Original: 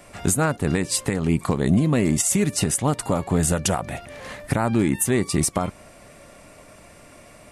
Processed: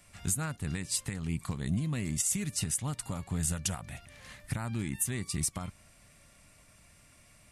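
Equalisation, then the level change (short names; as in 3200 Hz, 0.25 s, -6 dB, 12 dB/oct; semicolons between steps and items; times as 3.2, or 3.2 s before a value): tone controls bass +8 dB, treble 0 dB; passive tone stack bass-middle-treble 5-5-5; -2.0 dB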